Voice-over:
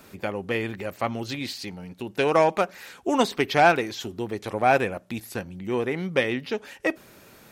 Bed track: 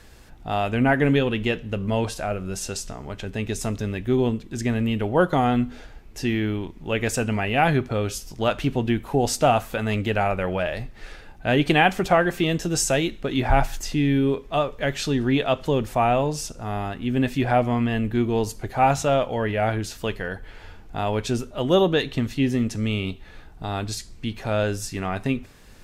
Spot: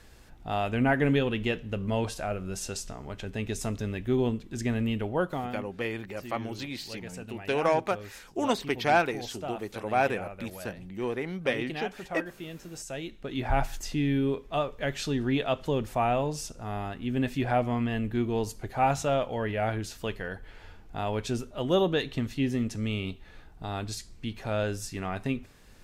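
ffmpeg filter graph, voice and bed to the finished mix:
ffmpeg -i stem1.wav -i stem2.wav -filter_complex "[0:a]adelay=5300,volume=-5.5dB[link_01];[1:a]volume=7.5dB,afade=type=out:start_time=4.9:duration=0.66:silence=0.211349,afade=type=in:start_time=12.84:duration=0.86:silence=0.237137[link_02];[link_01][link_02]amix=inputs=2:normalize=0" out.wav

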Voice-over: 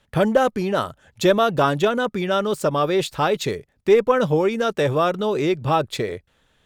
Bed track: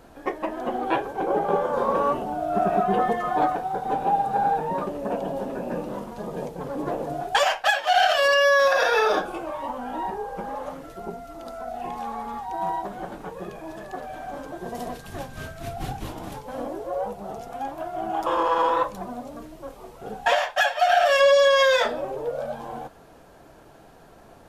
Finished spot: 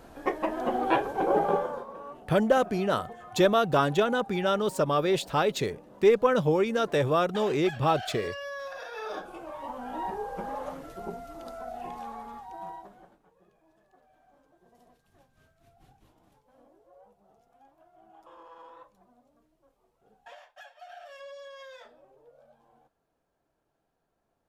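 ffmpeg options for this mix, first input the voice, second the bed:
ffmpeg -i stem1.wav -i stem2.wav -filter_complex "[0:a]adelay=2150,volume=-5dB[link_01];[1:a]volume=16.5dB,afade=type=out:start_time=1.41:duration=0.44:silence=0.105925,afade=type=in:start_time=8.93:duration=1.3:silence=0.141254,afade=type=out:start_time=11.21:duration=1.99:silence=0.0530884[link_02];[link_01][link_02]amix=inputs=2:normalize=0" out.wav

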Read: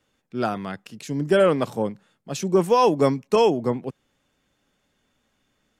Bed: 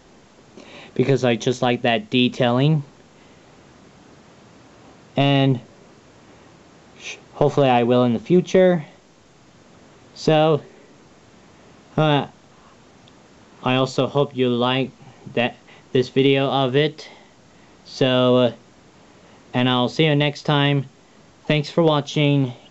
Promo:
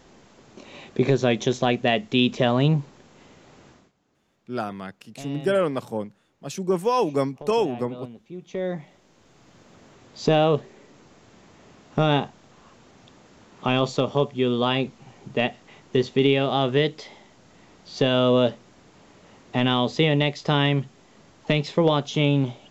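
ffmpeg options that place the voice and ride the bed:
ffmpeg -i stem1.wav -i stem2.wav -filter_complex "[0:a]adelay=4150,volume=-4dB[link_01];[1:a]volume=17dB,afade=type=out:start_time=3.68:duration=0.24:silence=0.1,afade=type=in:start_time=8.39:duration=1.15:silence=0.105925[link_02];[link_01][link_02]amix=inputs=2:normalize=0" out.wav

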